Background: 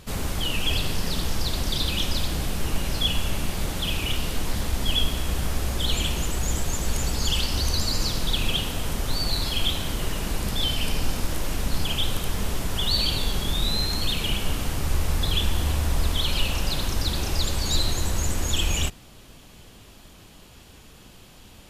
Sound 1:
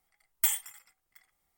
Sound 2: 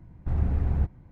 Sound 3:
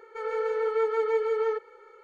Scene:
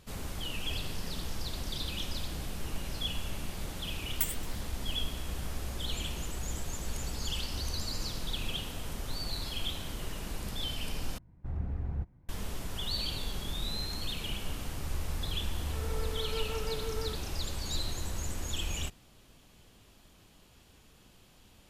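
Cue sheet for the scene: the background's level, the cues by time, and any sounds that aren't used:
background -11 dB
3.77 s: add 1 -5 dB + tremolo 9.1 Hz, depth 57%
11.18 s: replace with 2 -10 dB
15.57 s: add 3 -13 dB

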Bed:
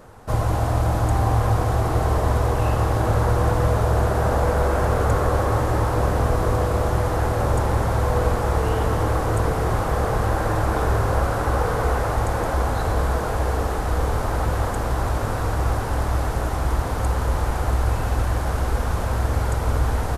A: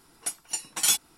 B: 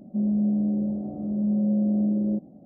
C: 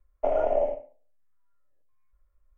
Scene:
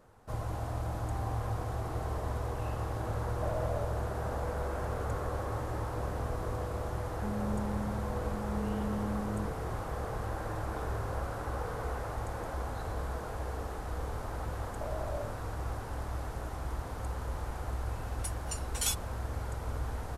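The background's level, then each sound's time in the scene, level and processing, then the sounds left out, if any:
bed -15 dB
3.19 s: add C -13.5 dB
7.08 s: add B -13.5 dB + loudspeaker Doppler distortion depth 0.25 ms
14.57 s: add C -15.5 dB
17.98 s: add A -9.5 dB

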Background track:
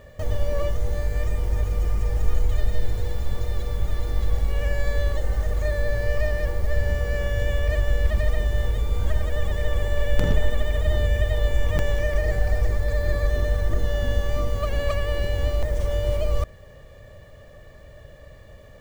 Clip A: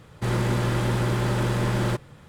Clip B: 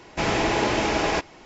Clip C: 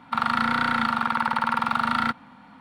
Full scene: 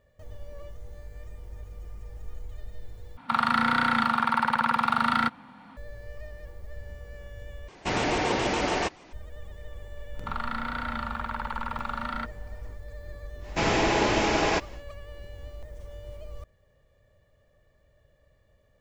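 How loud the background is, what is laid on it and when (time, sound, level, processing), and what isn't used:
background track -18.5 dB
3.17 s: replace with C -0.5 dB
7.68 s: replace with B -3.5 dB + vibrato with a chosen wave square 7 Hz, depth 160 cents
10.14 s: add C -9.5 dB + treble shelf 5.8 kHz -7 dB
13.39 s: add B -1 dB, fades 0.10 s
not used: A

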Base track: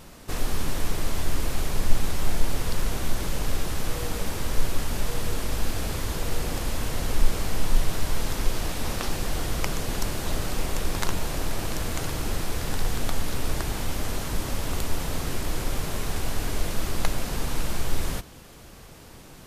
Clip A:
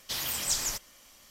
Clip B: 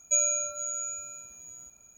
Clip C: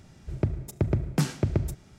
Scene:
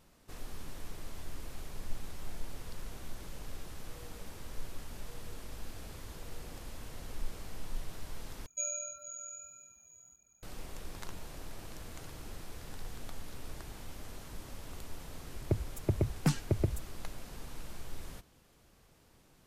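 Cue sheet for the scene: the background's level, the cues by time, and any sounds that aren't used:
base track -17.5 dB
8.46 s: replace with B -8 dB + flange 1.7 Hz, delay 0.3 ms, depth 1.8 ms, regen -26%
15.08 s: add C -2 dB + expander on every frequency bin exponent 2
not used: A

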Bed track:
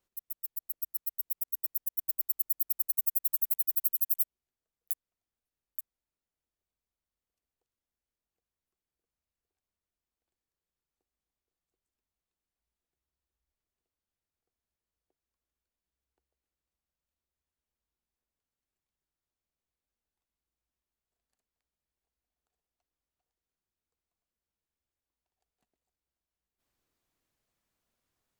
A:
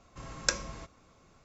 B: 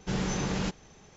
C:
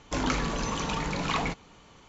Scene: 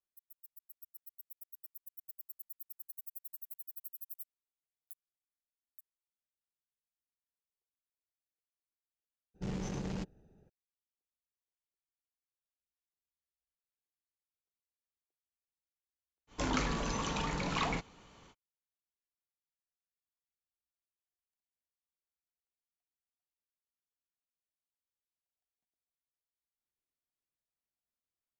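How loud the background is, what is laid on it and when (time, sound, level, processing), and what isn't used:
bed track -18 dB
9.34 s: add B -7 dB, fades 0.02 s + local Wiener filter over 41 samples
16.27 s: add C -5 dB, fades 0.05 s
not used: A

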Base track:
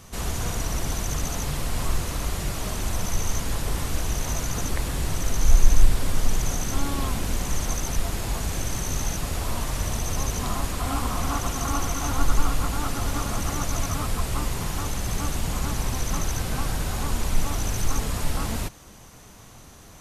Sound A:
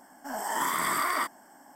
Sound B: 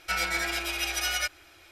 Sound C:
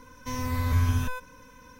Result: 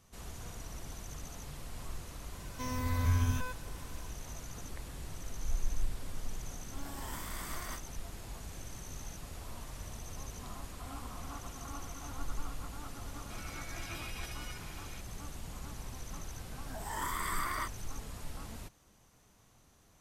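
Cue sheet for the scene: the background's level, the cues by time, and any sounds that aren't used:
base track -17.5 dB
2.33 s: add C -5.5 dB
6.52 s: add A -16.5 dB + formants flattened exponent 0.6
13.30 s: add B -7.5 dB + compressor with a negative ratio -40 dBFS
16.41 s: add A -8.5 dB + spectral noise reduction 7 dB

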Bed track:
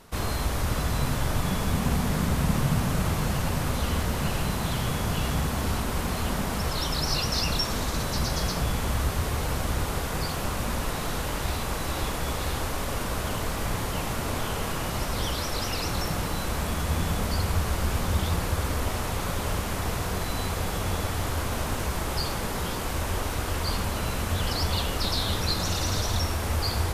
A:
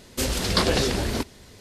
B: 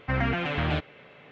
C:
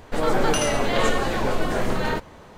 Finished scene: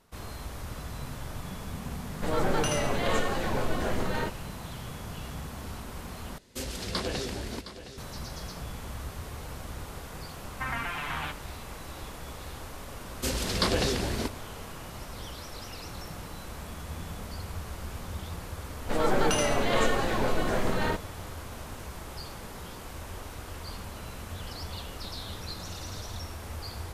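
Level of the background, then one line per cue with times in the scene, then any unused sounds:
bed track -12 dB
2.10 s: add C -6.5 dB
6.38 s: replace with A -10.5 dB + delay 714 ms -12.5 dB
10.52 s: add B -5 dB + resonant low shelf 710 Hz -9.5 dB, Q 3
13.05 s: add A -5 dB
18.77 s: add C -4 dB

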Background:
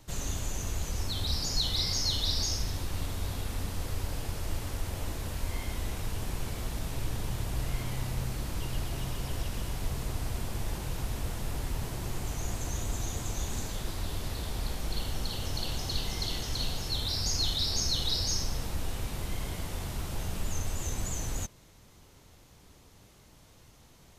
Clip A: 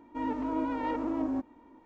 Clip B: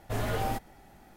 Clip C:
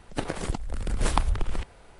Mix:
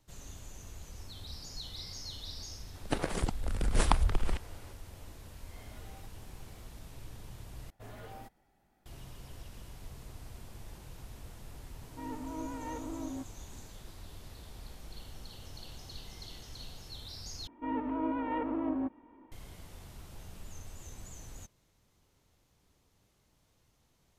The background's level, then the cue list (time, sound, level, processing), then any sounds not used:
background -14 dB
2.74 s: add C -2 dB
5.48 s: add B -9 dB + compression, threshold -43 dBFS
7.70 s: replace with B -17 dB
11.82 s: add A -9 dB
17.47 s: replace with A -2 dB + steep low-pass 3.2 kHz

